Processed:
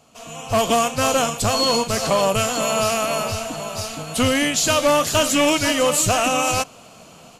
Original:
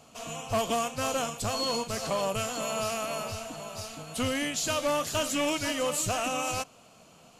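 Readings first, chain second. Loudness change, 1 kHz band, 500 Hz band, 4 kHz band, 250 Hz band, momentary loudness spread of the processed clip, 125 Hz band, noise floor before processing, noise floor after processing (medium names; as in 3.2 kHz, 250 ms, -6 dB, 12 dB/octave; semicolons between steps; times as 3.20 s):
+11.0 dB, +11.0 dB, +11.0 dB, +11.0 dB, +11.0 dB, 10 LU, +11.0 dB, -56 dBFS, -46 dBFS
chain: level rider gain up to 11 dB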